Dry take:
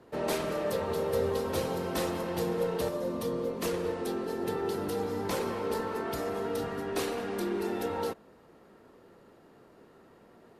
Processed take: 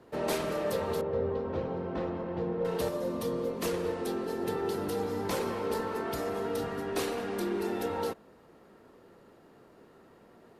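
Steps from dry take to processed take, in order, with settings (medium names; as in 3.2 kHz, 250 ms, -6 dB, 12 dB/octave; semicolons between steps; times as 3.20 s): 1.01–2.65 s: tape spacing loss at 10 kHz 43 dB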